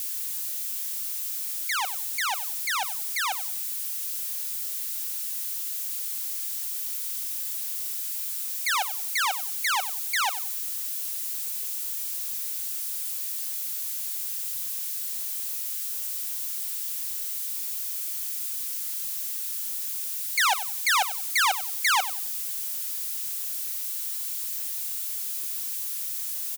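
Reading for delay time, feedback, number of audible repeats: 94 ms, 24%, 2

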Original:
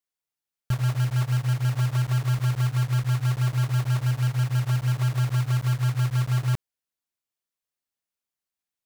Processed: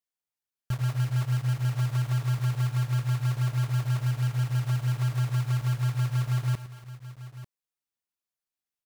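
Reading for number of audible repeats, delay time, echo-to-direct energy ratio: 3, 108 ms, −10.0 dB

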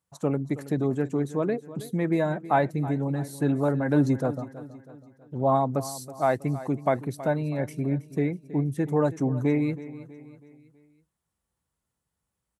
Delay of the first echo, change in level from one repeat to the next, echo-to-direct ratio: 323 ms, −6.5 dB, −15.0 dB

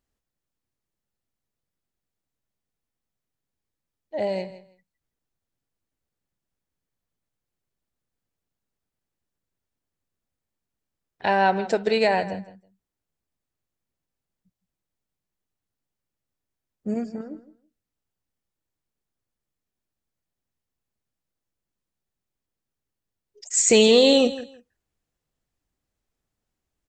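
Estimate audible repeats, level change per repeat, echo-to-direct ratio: 2, −15.0 dB, −15.5 dB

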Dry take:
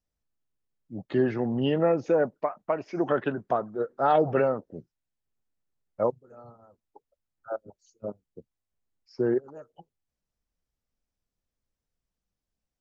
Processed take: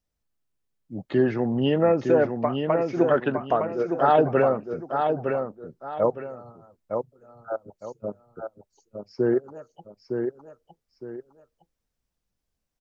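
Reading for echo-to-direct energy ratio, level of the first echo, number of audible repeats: −5.0 dB, −5.5 dB, 2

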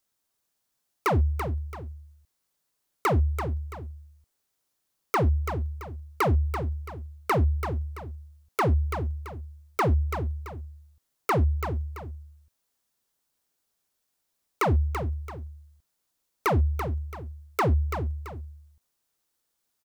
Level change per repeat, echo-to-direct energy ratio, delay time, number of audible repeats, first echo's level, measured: −9.0 dB, −7.5 dB, 335 ms, 2, −8.0 dB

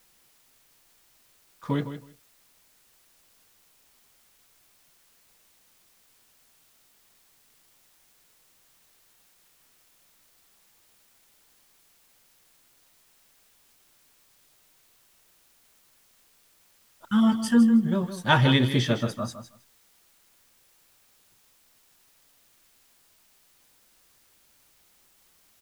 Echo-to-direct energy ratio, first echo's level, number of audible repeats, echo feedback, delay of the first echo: −11.0 dB, −11.0 dB, 2, 16%, 159 ms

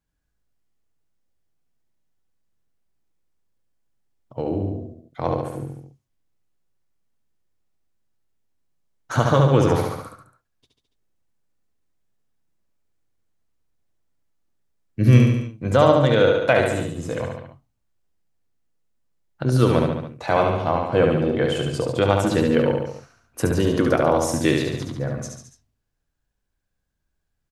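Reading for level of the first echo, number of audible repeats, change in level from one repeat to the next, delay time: −4.0 dB, 4, −4.5 dB, 71 ms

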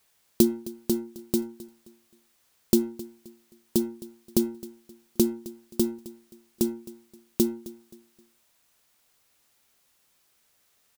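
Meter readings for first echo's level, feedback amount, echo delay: −18.5 dB, 34%, 263 ms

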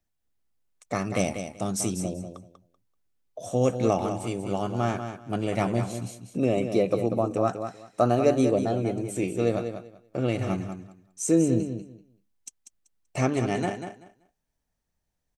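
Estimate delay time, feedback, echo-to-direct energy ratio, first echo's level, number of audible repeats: 192 ms, 19%, −8.5 dB, −8.5 dB, 2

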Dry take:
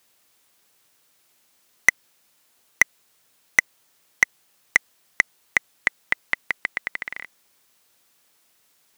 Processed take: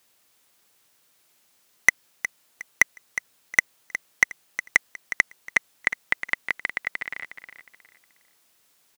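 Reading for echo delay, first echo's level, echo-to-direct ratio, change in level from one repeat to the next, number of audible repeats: 362 ms, −11.5 dB, −11.0 dB, −10.5 dB, 3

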